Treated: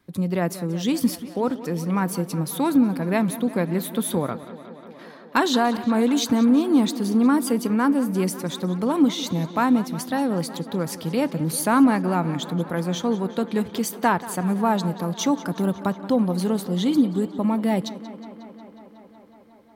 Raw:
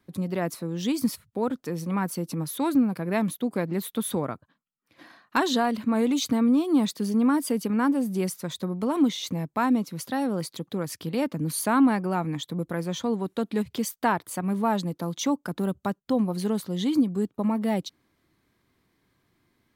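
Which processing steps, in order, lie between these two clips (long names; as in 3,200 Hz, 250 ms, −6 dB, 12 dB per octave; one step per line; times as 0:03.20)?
tape delay 182 ms, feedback 88%, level −15 dB, low-pass 5,300 Hz
on a send at −18.5 dB: convolution reverb RT60 0.50 s, pre-delay 3 ms
on the sum: level +3.5 dB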